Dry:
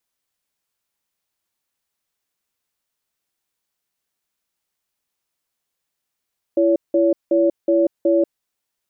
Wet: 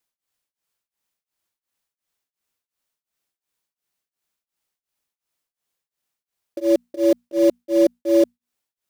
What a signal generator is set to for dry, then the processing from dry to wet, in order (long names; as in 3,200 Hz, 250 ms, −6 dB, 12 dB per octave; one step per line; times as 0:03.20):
tone pair in a cadence 336 Hz, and 566 Hz, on 0.19 s, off 0.18 s, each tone −15.5 dBFS 1.73 s
mains-hum notches 60/120/180/240 Hz
in parallel at −8 dB: bit reduction 4 bits
on the sum: tremolo along a rectified sine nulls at 2.8 Hz